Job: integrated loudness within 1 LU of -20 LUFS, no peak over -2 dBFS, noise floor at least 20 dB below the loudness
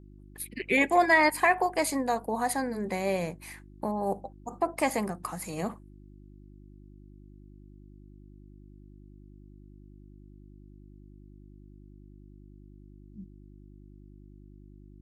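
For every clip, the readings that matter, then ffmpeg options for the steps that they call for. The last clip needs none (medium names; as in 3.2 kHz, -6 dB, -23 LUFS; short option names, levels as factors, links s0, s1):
hum 50 Hz; highest harmonic 350 Hz; hum level -49 dBFS; loudness -28.0 LUFS; peak level -10.5 dBFS; loudness target -20.0 LUFS
-> -af "bandreject=f=50:t=h:w=4,bandreject=f=100:t=h:w=4,bandreject=f=150:t=h:w=4,bandreject=f=200:t=h:w=4,bandreject=f=250:t=h:w=4,bandreject=f=300:t=h:w=4,bandreject=f=350:t=h:w=4"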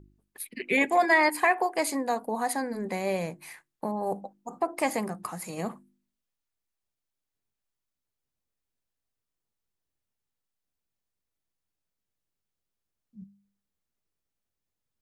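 hum not found; loudness -28.0 LUFS; peak level -10.5 dBFS; loudness target -20.0 LUFS
-> -af "volume=2.51"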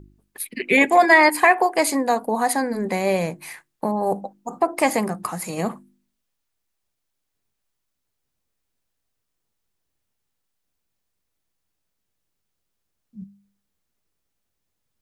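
loudness -20.0 LUFS; peak level -2.5 dBFS; noise floor -78 dBFS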